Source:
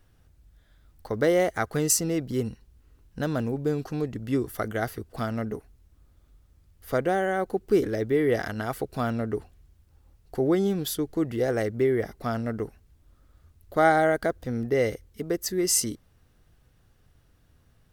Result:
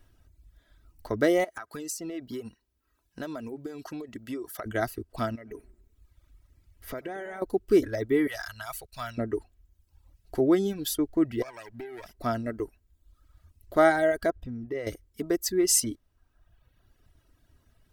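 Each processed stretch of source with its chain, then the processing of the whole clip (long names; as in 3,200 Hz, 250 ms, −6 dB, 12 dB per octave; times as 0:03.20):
0:01.44–0:04.66: high-pass filter 310 Hz 6 dB per octave + downward compressor 16 to 1, threshold −31 dBFS
0:05.35–0:07.42: parametric band 2,100 Hz +5 dB 0.53 octaves + downward compressor 5 to 1, threshold −33 dBFS + feedback echo with a swinging delay time 95 ms, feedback 49%, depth 201 cents, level −13.5 dB
0:08.27–0:09.18: guitar amp tone stack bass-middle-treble 10-0-10 + leveller curve on the samples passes 1
0:11.42–0:12.15: lower of the sound and its delayed copy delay 0.39 ms + low-shelf EQ 490 Hz −9.5 dB + downward compressor 12 to 1, threshold −35 dBFS
0:14.30–0:14.87: bass and treble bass +3 dB, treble −9 dB + downward compressor 2 to 1, threshold −35 dBFS
whole clip: reverb reduction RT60 1.1 s; comb filter 3.1 ms, depth 42%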